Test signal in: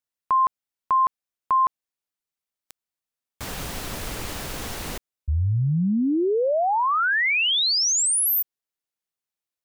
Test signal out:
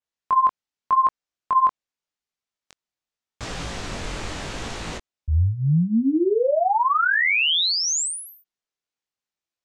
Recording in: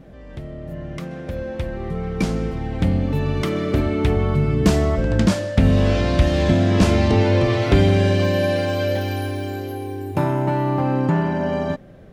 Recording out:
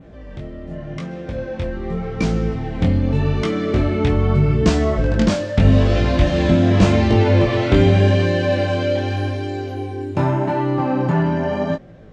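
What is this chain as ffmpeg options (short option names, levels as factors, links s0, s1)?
-af "lowpass=f=7400:w=0.5412,lowpass=f=7400:w=1.3066,adynamicequalizer=threshold=0.00631:dfrequency=5200:dqfactor=2.3:tfrequency=5200:tqfactor=2.3:attack=5:release=100:ratio=0.375:range=2:mode=cutabove:tftype=bell,flanger=delay=17.5:depth=6.1:speed=0.84,volume=1.68"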